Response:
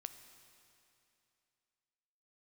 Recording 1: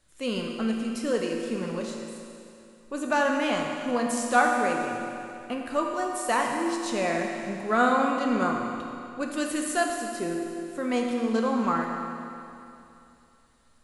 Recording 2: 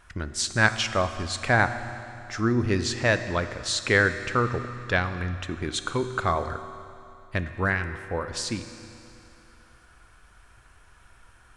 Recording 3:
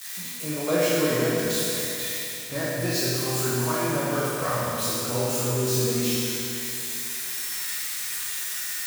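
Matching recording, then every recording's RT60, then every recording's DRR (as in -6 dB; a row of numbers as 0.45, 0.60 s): 2; 2.8, 2.7, 2.8 s; 0.5, 9.0, -9.5 dB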